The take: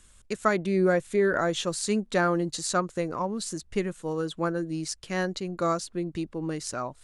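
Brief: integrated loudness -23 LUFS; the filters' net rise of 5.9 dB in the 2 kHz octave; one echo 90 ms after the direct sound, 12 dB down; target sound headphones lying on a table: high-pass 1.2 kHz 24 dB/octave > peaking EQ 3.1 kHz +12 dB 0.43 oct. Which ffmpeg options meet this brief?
-af "highpass=f=1200:w=0.5412,highpass=f=1200:w=1.3066,equalizer=f=2000:t=o:g=7,equalizer=f=3100:t=o:w=0.43:g=12,aecho=1:1:90:0.251,volume=2"

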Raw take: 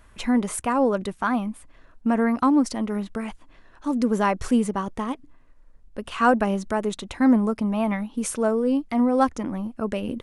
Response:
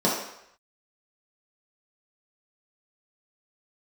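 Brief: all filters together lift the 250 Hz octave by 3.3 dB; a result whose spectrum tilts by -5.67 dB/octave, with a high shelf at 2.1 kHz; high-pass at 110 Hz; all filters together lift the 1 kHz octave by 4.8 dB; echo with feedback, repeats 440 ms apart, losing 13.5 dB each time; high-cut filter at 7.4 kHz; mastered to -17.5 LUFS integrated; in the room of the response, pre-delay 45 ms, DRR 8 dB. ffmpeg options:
-filter_complex "[0:a]highpass=110,lowpass=7400,equalizer=f=250:t=o:g=3.5,equalizer=f=1000:t=o:g=4,highshelf=f=2100:g=8.5,aecho=1:1:440|880:0.211|0.0444,asplit=2[s0][s1];[1:a]atrim=start_sample=2205,adelay=45[s2];[s1][s2]afir=irnorm=-1:irlink=0,volume=0.0668[s3];[s0][s3]amix=inputs=2:normalize=0,volume=1.06"

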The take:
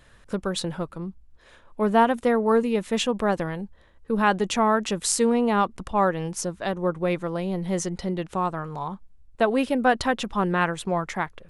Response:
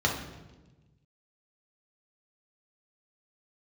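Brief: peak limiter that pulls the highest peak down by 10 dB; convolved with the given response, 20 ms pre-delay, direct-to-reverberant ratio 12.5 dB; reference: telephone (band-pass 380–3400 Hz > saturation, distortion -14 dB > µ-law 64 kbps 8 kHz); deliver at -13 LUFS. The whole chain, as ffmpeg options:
-filter_complex "[0:a]alimiter=limit=0.168:level=0:latency=1,asplit=2[s0][s1];[1:a]atrim=start_sample=2205,adelay=20[s2];[s1][s2]afir=irnorm=-1:irlink=0,volume=0.0596[s3];[s0][s3]amix=inputs=2:normalize=0,highpass=380,lowpass=3400,asoftclip=threshold=0.0944,volume=8.41" -ar 8000 -c:a pcm_mulaw

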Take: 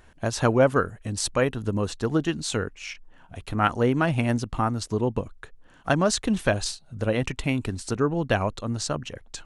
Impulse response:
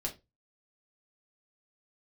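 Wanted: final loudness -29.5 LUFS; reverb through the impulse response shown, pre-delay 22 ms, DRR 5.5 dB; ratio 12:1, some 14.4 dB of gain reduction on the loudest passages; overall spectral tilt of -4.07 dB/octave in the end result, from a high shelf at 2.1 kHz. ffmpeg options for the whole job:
-filter_complex "[0:a]highshelf=f=2100:g=6,acompressor=threshold=0.0398:ratio=12,asplit=2[s0][s1];[1:a]atrim=start_sample=2205,adelay=22[s2];[s1][s2]afir=irnorm=-1:irlink=0,volume=0.447[s3];[s0][s3]amix=inputs=2:normalize=0,volume=1.41"

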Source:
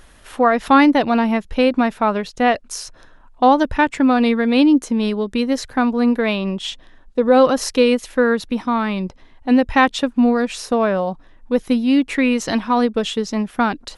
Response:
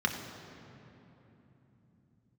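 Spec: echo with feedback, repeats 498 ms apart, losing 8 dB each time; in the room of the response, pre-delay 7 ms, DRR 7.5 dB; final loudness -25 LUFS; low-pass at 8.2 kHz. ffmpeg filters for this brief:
-filter_complex "[0:a]lowpass=8200,aecho=1:1:498|996|1494|1992|2490:0.398|0.159|0.0637|0.0255|0.0102,asplit=2[s0][s1];[1:a]atrim=start_sample=2205,adelay=7[s2];[s1][s2]afir=irnorm=-1:irlink=0,volume=0.15[s3];[s0][s3]amix=inputs=2:normalize=0,volume=0.398"

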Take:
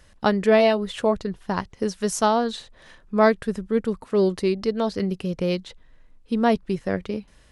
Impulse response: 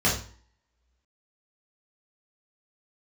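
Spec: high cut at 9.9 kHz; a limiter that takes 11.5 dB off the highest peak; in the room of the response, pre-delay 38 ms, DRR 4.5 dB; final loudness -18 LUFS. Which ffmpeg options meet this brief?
-filter_complex "[0:a]lowpass=9900,alimiter=limit=0.15:level=0:latency=1,asplit=2[s0][s1];[1:a]atrim=start_sample=2205,adelay=38[s2];[s1][s2]afir=irnorm=-1:irlink=0,volume=0.112[s3];[s0][s3]amix=inputs=2:normalize=0,volume=2.11"

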